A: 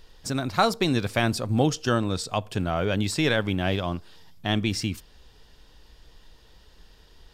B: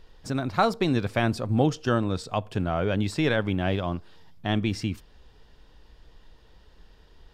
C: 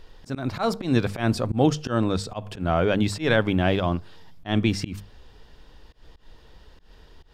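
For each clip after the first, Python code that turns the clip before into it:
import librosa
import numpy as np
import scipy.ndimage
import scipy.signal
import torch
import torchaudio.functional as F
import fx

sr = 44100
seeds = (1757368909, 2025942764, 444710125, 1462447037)

y1 = fx.high_shelf(x, sr, hz=3600.0, db=-11.0)
y2 = fx.hum_notches(y1, sr, base_hz=50, count=4)
y2 = fx.auto_swell(y2, sr, attack_ms=137.0)
y2 = y2 * librosa.db_to_amplitude(5.0)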